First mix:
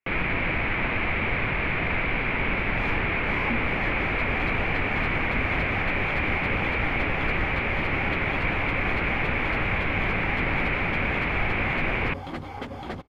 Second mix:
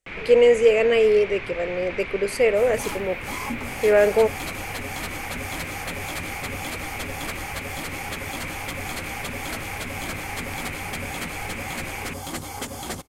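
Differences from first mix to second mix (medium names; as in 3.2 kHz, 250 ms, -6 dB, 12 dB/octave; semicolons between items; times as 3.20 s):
speech: unmuted; first sound -11.5 dB; master: remove distance through air 360 m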